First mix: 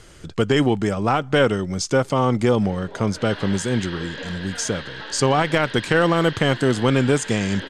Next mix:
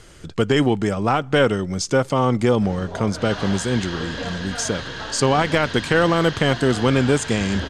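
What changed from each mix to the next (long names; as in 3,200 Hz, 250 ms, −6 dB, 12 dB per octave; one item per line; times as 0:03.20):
background: remove loudspeaker in its box 290–4,400 Hz, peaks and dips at 690 Hz −9 dB, 1,200 Hz −6 dB, 1,900 Hz +3 dB
reverb: on, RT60 1.0 s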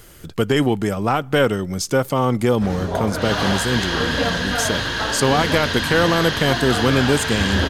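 background +9.0 dB
master: remove low-pass filter 8,300 Hz 24 dB per octave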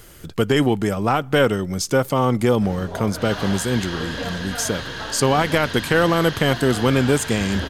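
background −8.0 dB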